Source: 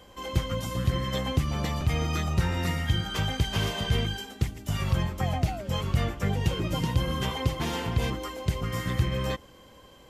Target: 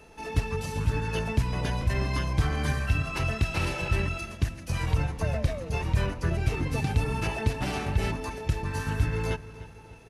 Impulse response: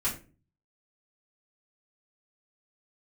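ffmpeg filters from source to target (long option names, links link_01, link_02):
-filter_complex "[0:a]asplit=2[link_01][link_02];[link_02]adelay=301,lowpass=frequency=4800:poles=1,volume=-16dB,asplit=2[link_03][link_04];[link_04]adelay=301,lowpass=frequency=4800:poles=1,volume=0.48,asplit=2[link_05][link_06];[link_06]adelay=301,lowpass=frequency=4800:poles=1,volume=0.48,asplit=2[link_07][link_08];[link_08]adelay=301,lowpass=frequency=4800:poles=1,volume=0.48[link_09];[link_01][link_03][link_05][link_07][link_09]amix=inputs=5:normalize=0,asetrate=37084,aresample=44100,atempo=1.18921"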